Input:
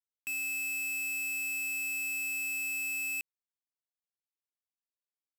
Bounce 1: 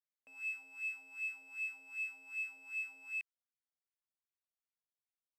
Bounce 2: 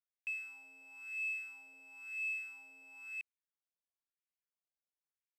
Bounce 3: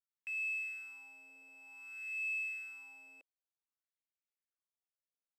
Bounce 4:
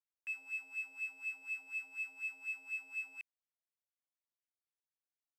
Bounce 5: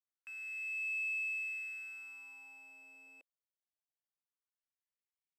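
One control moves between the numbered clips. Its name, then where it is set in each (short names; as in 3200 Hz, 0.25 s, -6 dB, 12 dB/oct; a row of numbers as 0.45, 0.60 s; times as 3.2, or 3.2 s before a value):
wah, rate: 2.6, 0.99, 0.54, 4.1, 0.23 Hz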